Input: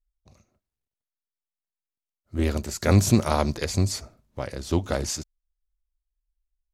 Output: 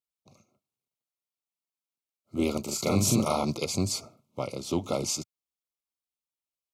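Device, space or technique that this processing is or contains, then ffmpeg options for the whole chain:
PA system with an anti-feedback notch: -filter_complex "[0:a]highpass=f=120:w=0.5412,highpass=f=120:w=1.3066,asuperstop=centerf=1700:order=20:qfactor=2.5,alimiter=limit=0.158:level=0:latency=1:release=78,asettb=1/sr,asplit=3[s0][s1][s2];[s0]atrim=end=2.634[s3];[s1]atrim=start=2.63:end=3.45,asetpts=PTS-STARTPTS,afade=t=in:d=0.004:c=qsin,afade=t=out:st=0.816:d=0.004:c=qsin,asplit=2[s4][s5];[s5]adelay=41,volume=0.708[s6];[s4][s6]amix=inputs=2:normalize=0,atrim=end_sample=36162[s7];[s2]atrim=start=3.446[s8];[s3][s7]acrossfade=d=0.004:c1=hsin:c2=qsin[s9];[s9][s8]acrossfade=d=0.004:c1=qsin:c2=hsin"

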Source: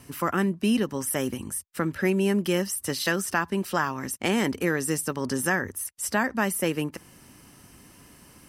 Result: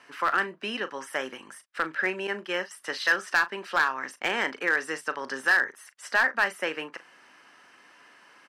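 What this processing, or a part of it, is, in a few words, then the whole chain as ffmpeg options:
megaphone: -filter_complex "[0:a]asettb=1/sr,asplit=3[s0][s1][s2];[s0]atrim=end=2.274[s3];[s1]atrim=start=2.27:end=2.71,asetpts=PTS-STARTPTS,afade=t=in:d=0.004:c=qsin,afade=t=out:st=0.436:d=0.004:c=qsin,agate=range=0.0224:threshold=0.0794:ratio=3:detection=peak[s4];[s2]atrim=start=2.706[s5];[s3][s4]acrossfade=d=0.004:c1=hsin:c2=qsin[s6];[s6][s5]acrossfade=d=0.004:c1=qsin:c2=hsin,highpass=640,lowpass=3600,equalizer=f=1600:t=o:w=0.56:g=6.5,asoftclip=type=hard:threshold=0.141,asplit=2[s7][s8];[s8]adelay=38,volume=0.211[s9];[s7][s9]amix=inputs=2:normalize=0,volume=1.19"

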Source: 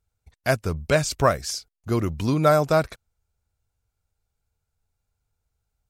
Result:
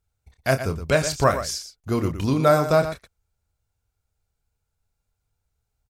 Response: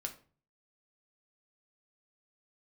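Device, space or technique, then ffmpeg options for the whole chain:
slapback doubling: -filter_complex "[0:a]asplit=3[s0][s1][s2];[s1]adelay=30,volume=0.355[s3];[s2]adelay=118,volume=0.299[s4];[s0][s3][s4]amix=inputs=3:normalize=0"

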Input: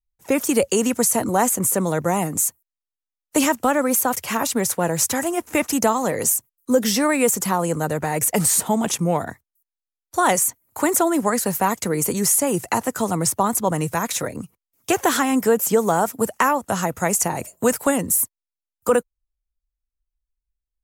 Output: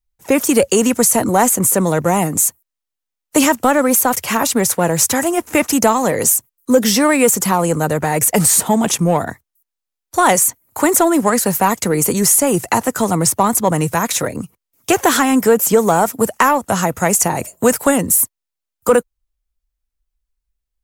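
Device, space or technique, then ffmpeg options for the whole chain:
parallel distortion: -filter_complex "[0:a]asplit=2[s0][s1];[s1]asoftclip=type=hard:threshold=0.126,volume=0.316[s2];[s0][s2]amix=inputs=2:normalize=0,volume=1.58"

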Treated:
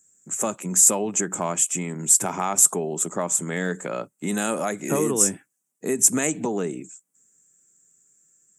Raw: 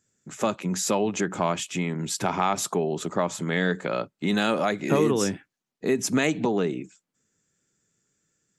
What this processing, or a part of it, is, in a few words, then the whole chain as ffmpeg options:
budget condenser microphone: -af "highpass=120,highshelf=f=5900:t=q:w=3:g=13,volume=0.841"

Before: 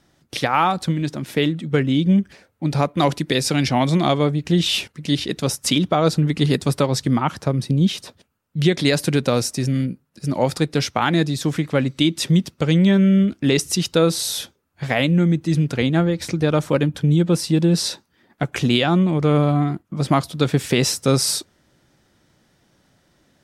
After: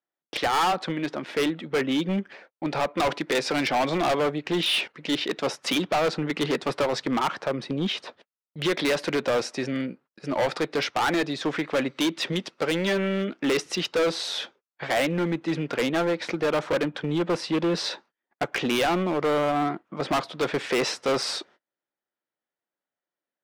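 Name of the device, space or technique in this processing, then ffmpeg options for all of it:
walkie-talkie: -filter_complex "[0:a]asettb=1/sr,asplit=3[s0][s1][s2];[s0]atrim=end=12.324[s3];[s1]atrim=start=12.32:end=13.28,asetpts=PTS-STARTPTS,afade=t=in:d=0.004:c=qsin,afade=t=out:st=0.956:d=0.004:c=qsin,bass=f=250:g=-4,treble=f=4000:g=6[s4];[s2]atrim=start=13.276[s5];[s3][s4]acrossfade=d=0.004:c1=hsin:c2=qsin[s6];[s6][s5]acrossfade=d=0.004:c1=qsin:c2=hsin,highpass=460,lowpass=2700,asoftclip=type=hard:threshold=0.0596,agate=range=0.0251:threshold=0.00178:ratio=16:detection=peak,volume=1.68"

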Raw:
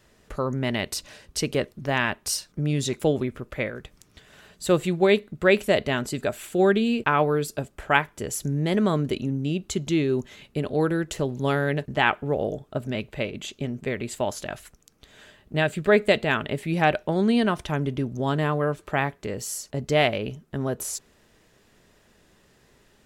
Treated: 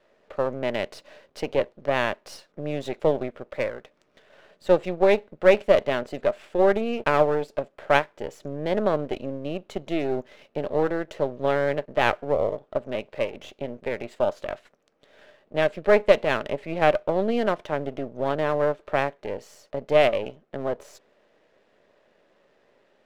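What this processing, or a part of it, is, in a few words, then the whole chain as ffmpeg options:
crystal radio: -af "highpass=270,lowpass=2900,aeval=exprs='if(lt(val(0),0),0.251*val(0),val(0))':c=same,equalizer=f=570:t=o:w=0.58:g=10"

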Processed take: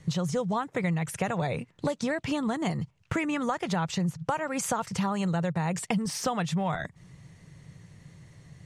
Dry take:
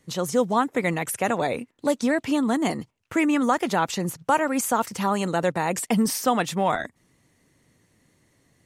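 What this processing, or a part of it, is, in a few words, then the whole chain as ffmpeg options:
jukebox: -af "lowpass=7500,lowshelf=f=200:t=q:w=3:g=7,acompressor=threshold=0.0224:ratio=6,volume=2.11"

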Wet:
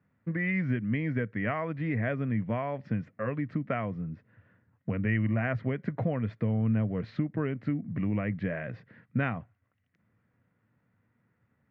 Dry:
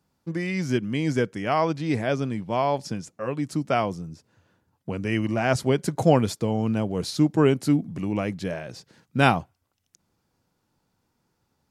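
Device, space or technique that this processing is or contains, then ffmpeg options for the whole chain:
bass amplifier: -af "acompressor=threshold=0.0447:ratio=5,highpass=77,equalizer=f=110:t=q:w=4:g=9,equalizer=f=220:t=q:w=4:g=4,equalizer=f=360:t=q:w=4:g=-7,equalizer=f=850:t=q:w=4:g=-10,equalizer=f=1900:t=q:w=4:g=9,lowpass=f=2300:w=0.5412,lowpass=f=2300:w=1.3066"

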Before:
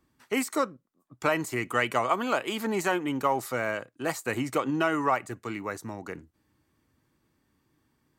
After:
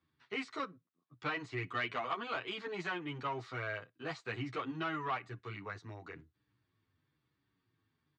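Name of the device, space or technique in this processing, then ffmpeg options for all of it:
barber-pole flanger into a guitar amplifier: -filter_complex "[0:a]asplit=2[s0][s1];[s1]adelay=9.6,afreqshift=-1[s2];[s0][s2]amix=inputs=2:normalize=1,asoftclip=type=tanh:threshold=0.0891,highpass=82,equalizer=f=110:t=q:w=4:g=5,equalizer=f=220:t=q:w=4:g=-9,equalizer=f=330:t=q:w=4:g=-4,equalizer=f=560:t=q:w=4:g=-9,equalizer=f=860:t=q:w=4:g=-5,equalizer=f=3700:t=q:w=4:g=4,lowpass=f=4500:w=0.5412,lowpass=f=4500:w=1.3066,volume=0.631"

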